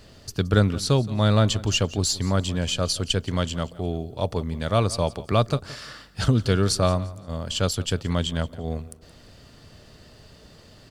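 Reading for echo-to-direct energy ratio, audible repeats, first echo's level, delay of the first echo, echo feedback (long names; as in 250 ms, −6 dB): −18.5 dB, 2, −19.0 dB, 172 ms, 30%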